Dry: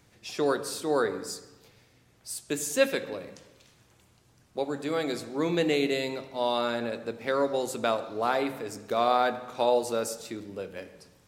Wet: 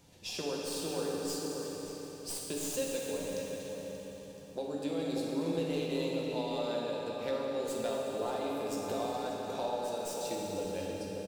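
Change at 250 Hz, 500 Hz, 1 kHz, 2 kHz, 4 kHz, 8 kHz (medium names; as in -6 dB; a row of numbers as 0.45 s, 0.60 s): -4.0 dB, -6.0 dB, -10.0 dB, -11.5 dB, -5.0 dB, -3.0 dB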